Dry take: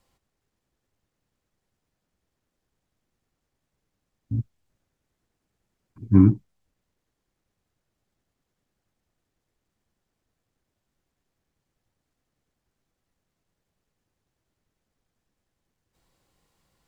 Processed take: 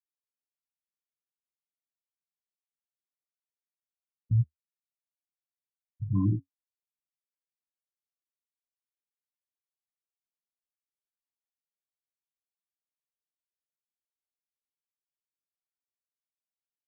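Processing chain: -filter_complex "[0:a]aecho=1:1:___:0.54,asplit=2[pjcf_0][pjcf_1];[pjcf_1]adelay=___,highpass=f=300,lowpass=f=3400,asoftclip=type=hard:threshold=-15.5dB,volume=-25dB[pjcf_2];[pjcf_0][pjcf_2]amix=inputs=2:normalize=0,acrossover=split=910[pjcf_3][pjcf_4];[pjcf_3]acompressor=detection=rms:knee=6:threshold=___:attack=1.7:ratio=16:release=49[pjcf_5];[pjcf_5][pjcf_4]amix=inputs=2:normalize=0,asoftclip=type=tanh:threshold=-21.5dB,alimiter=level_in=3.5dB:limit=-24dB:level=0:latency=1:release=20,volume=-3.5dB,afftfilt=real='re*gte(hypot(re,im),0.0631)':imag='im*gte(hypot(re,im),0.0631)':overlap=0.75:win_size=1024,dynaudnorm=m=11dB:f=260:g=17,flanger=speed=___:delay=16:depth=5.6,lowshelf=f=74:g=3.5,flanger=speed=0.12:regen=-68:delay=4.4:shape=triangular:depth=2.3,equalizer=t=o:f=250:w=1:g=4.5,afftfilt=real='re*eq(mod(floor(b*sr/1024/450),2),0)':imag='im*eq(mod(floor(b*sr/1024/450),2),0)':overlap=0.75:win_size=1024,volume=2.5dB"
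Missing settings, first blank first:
2, 130, -25dB, 0.9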